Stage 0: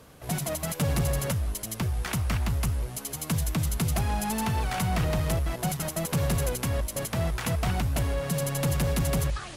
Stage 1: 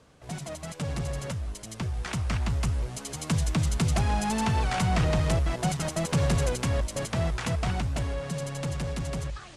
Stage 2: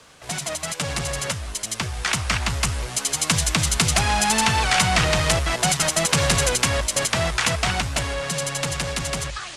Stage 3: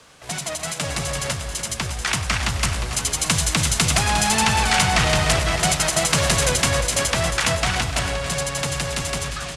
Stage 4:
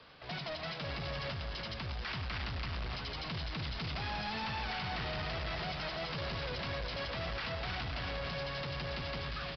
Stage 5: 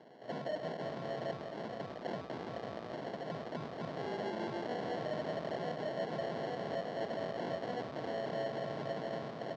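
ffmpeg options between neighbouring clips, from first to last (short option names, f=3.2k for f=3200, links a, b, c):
-af "lowpass=f=8.7k:w=0.5412,lowpass=f=8.7k:w=1.3066,dynaudnorm=f=270:g=17:m=8dB,volume=-6dB"
-filter_complex "[0:a]tiltshelf=f=720:g=-7.5,acrossover=split=220|1400|4000[a][b][c][d];[b]volume=29dB,asoftclip=hard,volume=-29dB[e];[a][e][c][d]amix=inputs=4:normalize=0,volume=8dB"
-af "aecho=1:1:96|296|355|612:0.2|0.224|0.335|0.224"
-af "alimiter=limit=-14.5dB:level=0:latency=1:release=104,aresample=11025,asoftclip=type=tanh:threshold=-28.5dB,aresample=44100,volume=-6.5dB"
-af "acrusher=samples=36:mix=1:aa=0.000001,highpass=f=150:w=0.5412,highpass=f=150:w=1.3066,equalizer=f=450:t=q:w=4:g=3,equalizer=f=660:t=q:w=4:g=8,equalizer=f=1.1k:t=q:w=4:g=5,equalizer=f=2.6k:t=q:w=4:g=-4,lowpass=f=4.8k:w=0.5412,lowpass=f=4.8k:w=1.3066,volume=-1.5dB"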